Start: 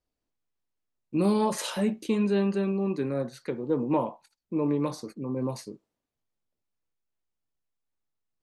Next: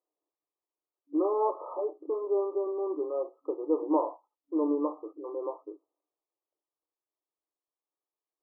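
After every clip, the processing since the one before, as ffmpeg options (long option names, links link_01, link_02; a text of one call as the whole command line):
ffmpeg -i in.wav -af "afftfilt=real='re*between(b*sr/4096,290,1300)':imag='im*between(b*sr/4096,290,1300)':win_size=4096:overlap=0.75" out.wav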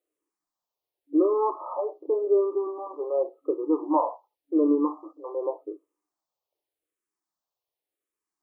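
ffmpeg -i in.wav -filter_complex "[0:a]asplit=2[link_01][link_02];[link_02]afreqshift=-0.88[link_03];[link_01][link_03]amix=inputs=2:normalize=1,volume=7dB" out.wav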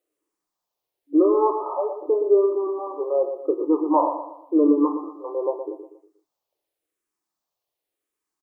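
ffmpeg -i in.wav -af "aecho=1:1:119|238|357|476:0.355|0.138|0.054|0.021,volume=4dB" out.wav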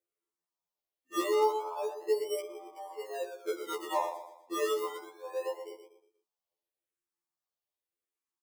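ffmpeg -i in.wav -filter_complex "[0:a]acrossover=split=430[link_01][link_02];[link_01]acrusher=samples=23:mix=1:aa=0.000001:lfo=1:lforange=13.8:lforate=0.29[link_03];[link_03][link_02]amix=inputs=2:normalize=0,afftfilt=real='re*2*eq(mod(b,4),0)':imag='im*2*eq(mod(b,4),0)':win_size=2048:overlap=0.75,volume=-8.5dB" out.wav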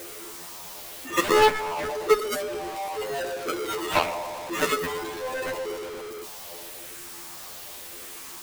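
ffmpeg -i in.wav -af "aeval=exprs='val(0)+0.5*0.0106*sgn(val(0))':channel_layout=same,aeval=exprs='0.158*(cos(1*acos(clip(val(0)/0.158,-1,1)))-cos(1*PI/2))+0.0501*(cos(7*acos(clip(val(0)/0.158,-1,1)))-cos(7*PI/2))':channel_layout=same,volume=7dB" out.wav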